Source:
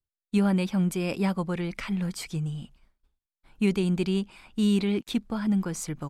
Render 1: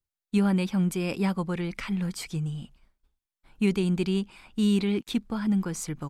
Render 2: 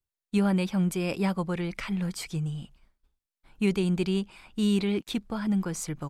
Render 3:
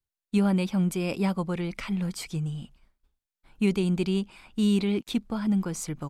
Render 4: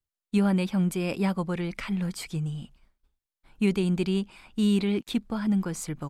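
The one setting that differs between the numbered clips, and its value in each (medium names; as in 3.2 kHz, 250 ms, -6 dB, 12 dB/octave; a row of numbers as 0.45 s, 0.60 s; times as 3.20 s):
dynamic bell, frequency: 620 Hz, 240 Hz, 1.7 kHz, 5.9 kHz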